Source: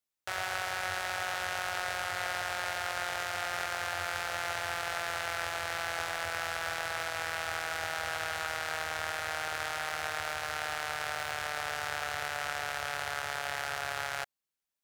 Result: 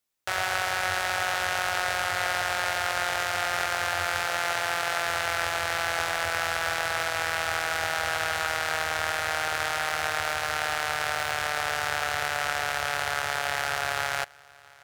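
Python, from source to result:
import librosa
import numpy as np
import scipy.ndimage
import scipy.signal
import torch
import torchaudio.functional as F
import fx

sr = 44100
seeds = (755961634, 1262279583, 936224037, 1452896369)

y = fx.highpass(x, sr, hz=120.0, slope=12, at=(4.26, 5.03))
y = y + 10.0 ** (-24.0 / 20.0) * np.pad(y, (int(671 * sr / 1000.0), 0))[:len(y)]
y = F.gain(torch.from_numpy(y), 7.0).numpy()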